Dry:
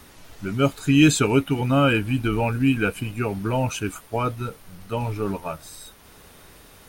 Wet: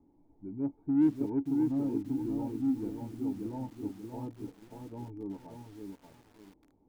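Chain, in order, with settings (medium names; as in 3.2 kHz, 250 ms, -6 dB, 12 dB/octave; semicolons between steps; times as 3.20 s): cascade formant filter u; in parallel at -6 dB: saturation -24.5 dBFS, distortion -6 dB; on the sum: bit-crushed delay 585 ms, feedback 35%, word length 8-bit, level -4 dB; trim -9 dB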